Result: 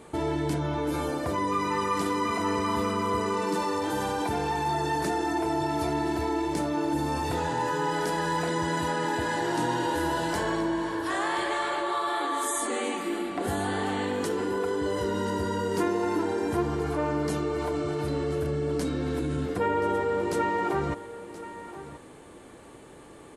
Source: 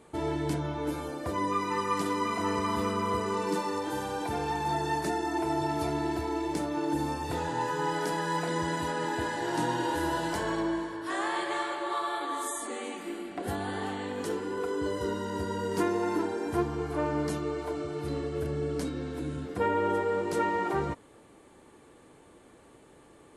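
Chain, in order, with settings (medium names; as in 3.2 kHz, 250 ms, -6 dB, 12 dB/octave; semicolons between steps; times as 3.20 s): in parallel at -2.5 dB: compressor with a negative ratio -36 dBFS, ratio -1; on the sum: delay 1027 ms -14.5 dB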